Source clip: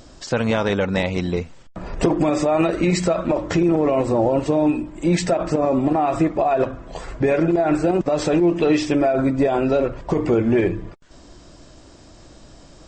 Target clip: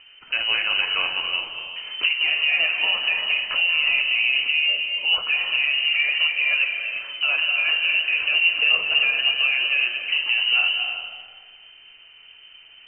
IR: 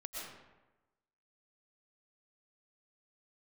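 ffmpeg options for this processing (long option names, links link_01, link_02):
-filter_complex "[0:a]flanger=delay=9.6:depth=9.5:regen=68:speed=1.2:shape=sinusoidal,lowpass=frequency=2600:width_type=q:width=0.5098,lowpass=frequency=2600:width_type=q:width=0.6013,lowpass=frequency=2600:width_type=q:width=0.9,lowpass=frequency=2600:width_type=q:width=2.563,afreqshift=-3100,asplit=2[link_01][link_02];[1:a]atrim=start_sample=2205,asetrate=24255,aresample=44100,lowshelf=frequency=150:gain=11.5[link_03];[link_02][link_03]afir=irnorm=-1:irlink=0,volume=-3dB[link_04];[link_01][link_04]amix=inputs=2:normalize=0,volume=-3dB"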